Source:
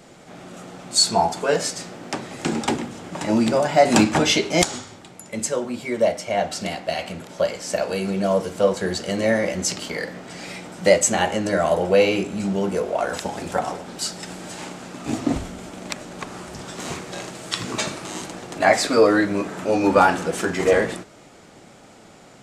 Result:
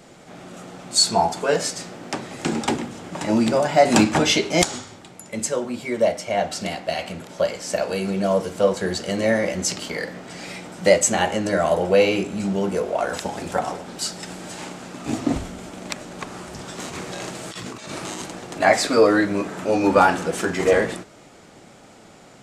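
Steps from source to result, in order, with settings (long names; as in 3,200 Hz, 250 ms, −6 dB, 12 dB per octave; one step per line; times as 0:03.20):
0:16.84–0:18.22: compressor whose output falls as the input rises −33 dBFS, ratio −1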